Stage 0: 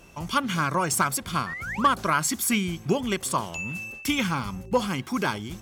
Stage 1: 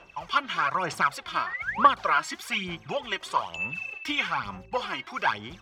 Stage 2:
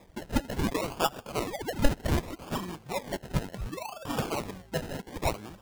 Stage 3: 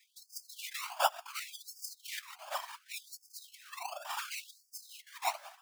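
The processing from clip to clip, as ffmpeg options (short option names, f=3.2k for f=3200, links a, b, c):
-filter_complex "[0:a]aphaser=in_gain=1:out_gain=1:delay=3.2:decay=0.61:speed=1.1:type=sinusoidal,acrossover=split=550 4400:gain=0.158 1 0.0631[a][b][c];[a][b][c]amix=inputs=3:normalize=0"
-af "acrusher=samples=30:mix=1:aa=0.000001:lfo=1:lforange=18:lforate=0.67,volume=-3dB"
-af "afftfilt=real='hypot(re,im)*cos(2*PI*random(0))':imag='hypot(re,im)*sin(2*PI*random(1))':win_size=512:overlap=0.75,afftfilt=real='re*gte(b*sr/1024,550*pow(4600/550,0.5+0.5*sin(2*PI*0.69*pts/sr)))':imag='im*gte(b*sr/1024,550*pow(4600/550,0.5+0.5*sin(2*PI*0.69*pts/sr)))':win_size=1024:overlap=0.75,volume=4.5dB"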